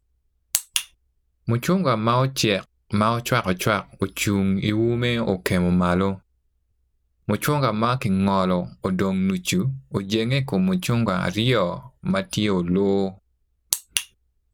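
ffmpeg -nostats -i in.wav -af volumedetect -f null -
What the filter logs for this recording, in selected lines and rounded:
mean_volume: -23.0 dB
max_volume: -1.7 dB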